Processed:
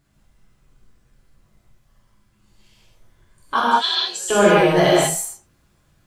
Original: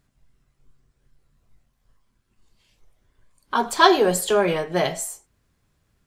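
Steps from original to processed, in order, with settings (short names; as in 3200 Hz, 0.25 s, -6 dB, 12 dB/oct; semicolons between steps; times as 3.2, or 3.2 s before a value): 3.59–4.28 band-pass 2500 Hz -> 7500 Hz, Q 4.1; non-linear reverb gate 0.23 s flat, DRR -7.5 dB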